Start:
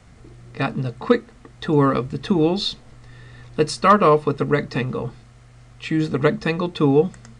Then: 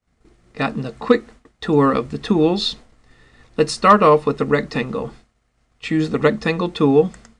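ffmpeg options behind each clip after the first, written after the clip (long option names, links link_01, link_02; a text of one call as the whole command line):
ffmpeg -i in.wav -af "agate=range=-33dB:threshold=-35dB:ratio=3:detection=peak,equalizer=frequency=120:width_type=o:width=0.33:gain=-12.5,volume=2.5dB" out.wav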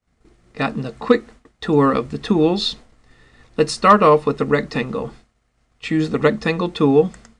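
ffmpeg -i in.wav -af anull out.wav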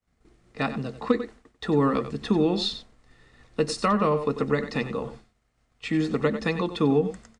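ffmpeg -i in.wav -filter_complex "[0:a]aecho=1:1:93:0.237,acrossover=split=300[link_01][link_02];[link_02]acompressor=threshold=-16dB:ratio=6[link_03];[link_01][link_03]amix=inputs=2:normalize=0,volume=-5.5dB" out.wav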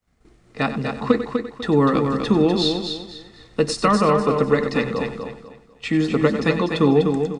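ffmpeg -i in.wav -af "aecho=1:1:248|496|744|992:0.501|0.145|0.0421|0.0122,volume=5dB" out.wav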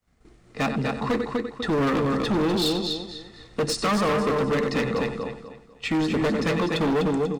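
ffmpeg -i in.wav -af "volume=20dB,asoftclip=hard,volume=-20dB" out.wav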